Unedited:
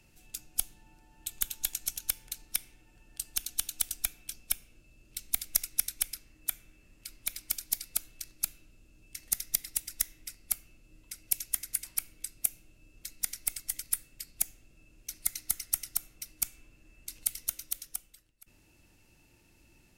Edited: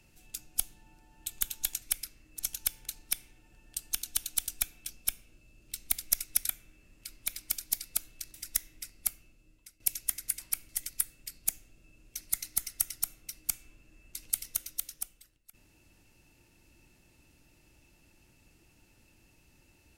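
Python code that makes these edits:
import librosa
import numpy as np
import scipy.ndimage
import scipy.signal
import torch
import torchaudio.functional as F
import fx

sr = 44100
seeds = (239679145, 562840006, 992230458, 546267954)

y = fx.edit(x, sr, fx.move(start_s=5.92, length_s=0.57, to_s=1.82),
    fx.cut(start_s=8.34, length_s=1.45),
    fx.fade_out_to(start_s=10.54, length_s=0.71, floor_db=-15.0),
    fx.cut(start_s=12.14, length_s=1.48), tone=tone)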